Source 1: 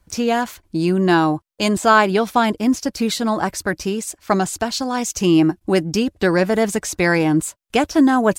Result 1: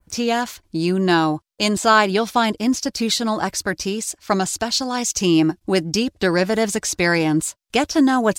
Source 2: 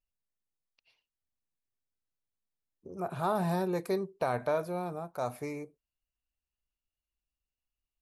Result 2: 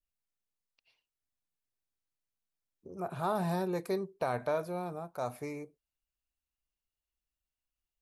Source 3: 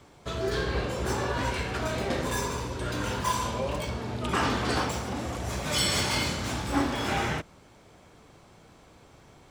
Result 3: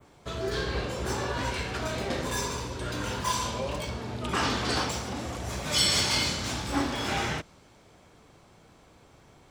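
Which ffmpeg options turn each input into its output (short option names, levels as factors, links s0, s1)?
-af "adynamicequalizer=threshold=0.01:dfrequency=4900:dqfactor=0.75:tfrequency=4900:tqfactor=0.75:attack=5:release=100:ratio=0.375:range=3.5:mode=boostabove:tftype=bell,volume=0.794"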